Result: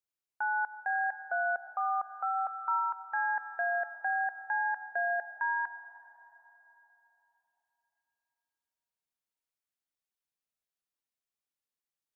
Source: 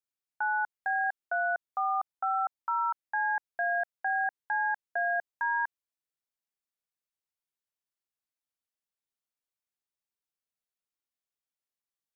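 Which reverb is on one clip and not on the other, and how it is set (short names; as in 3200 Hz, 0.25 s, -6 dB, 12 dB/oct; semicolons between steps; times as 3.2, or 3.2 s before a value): digital reverb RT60 3.7 s, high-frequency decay 0.55×, pre-delay 60 ms, DRR 11.5 dB; gain -2 dB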